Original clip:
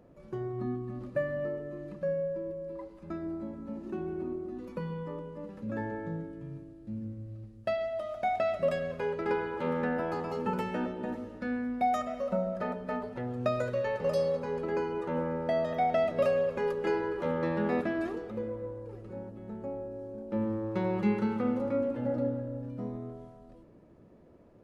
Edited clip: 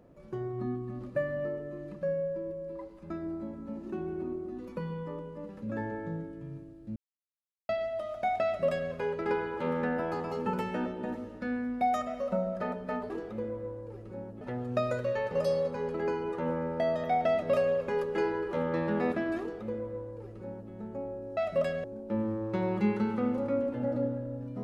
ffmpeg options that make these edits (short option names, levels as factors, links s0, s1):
-filter_complex "[0:a]asplit=7[s0][s1][s2][s3][s4][s5][s6];[s0]atrim=end=6.96,asetpts=PTS-STARTPTS,afade=t=out:st=6.956:d=0.004:c=hsin[s7];[s1]atrim=start=6.96:end=7.69,asetpts=PTS-STARTPTS,volume=0[s8];[s2]atrim=start=7.69:end=13.102,asetpts=PTS-STARTPTS,afade=t=in:d=0.004:c=hsin[s9];[s3]atrim=start=18.088:end=19.402[s10];[s4]atrim=start=13.098:end=20.062[s11];[s5]atrim=start=8.438:end=8.912[s12];[s6]atrim=start=20.058[s13];[s7][s8][s9]concat=n=3:v=0:a=1[s14];[s14][s10]acrossfade=d=0.004:c1=hsin:c2=hsin[s15];[s15][s11]acrossfade=d=0.004:c1=hsin:c2=hsin[s16];[s16][s12]acrossfade=d=0.004:c1=hsin:c2=hsin[s17];[s17][s13]acrossfade=d=0.004:c1=hsin:c2=hsin"